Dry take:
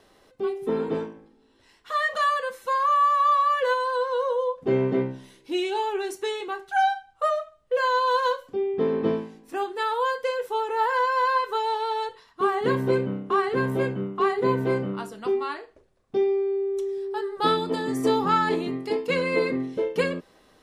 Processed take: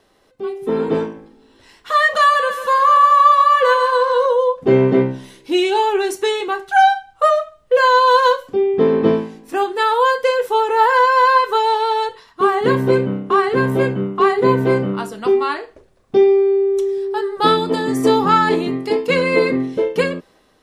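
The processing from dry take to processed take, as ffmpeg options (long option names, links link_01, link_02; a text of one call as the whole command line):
ffmpeg -i in.wav -filter_complex "[0:a]asettb=1/sr,asplit=3[link_01][link_02][link_03];[link_01]atrim=end=2.194[link_04];[link_02]atrim=start=2.19:end=4.26,asetpts=PTS-STARTPTS,afade=type=in:duration=0.004:curve=qsin,afade=type=out:start_time=2.066:duration=0.004:curve=qsin,aecho=1:1:142|284|426|568|710|852:0.335|0.174|0.0906|0.0471|0.0245|0.0127,atrim=end_sample=91287[link_05];[link_03]atrim=start=4.256[link_06];[link_04][link_05]acrossfade=duration=0.004:curve1=hsin:curve2=qsin[link_07];[link_07][link_06]acrossfade=duration=0.004:curve1=qsin:curve2=hsin,dynaudnorm=framelen=220:gausssize=7:maxgain=11.5dB" out.wav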